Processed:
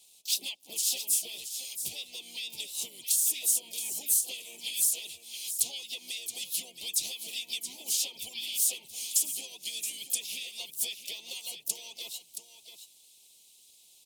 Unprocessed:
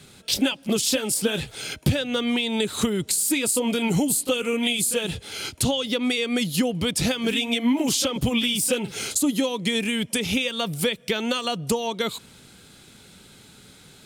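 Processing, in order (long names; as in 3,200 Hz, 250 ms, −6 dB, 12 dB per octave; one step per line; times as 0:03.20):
first-order pre-emphasis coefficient 0.97
harmonic and percussive parts rebalanced harmonic −8 dB
parametric band 130 Hz −7 dB 1.1 octaves
pitch-shifted copies added −5 semitones −8 dB, +5 semitones −9 dB, +7 semitones −12 dB
surface crackle 66 per second −50 dBFS
Chebyshev band-stop filter 800–2,800 Hz, order 2
on a send: single-tap delay 673 ms −10 dB
on the sum: level −2 dB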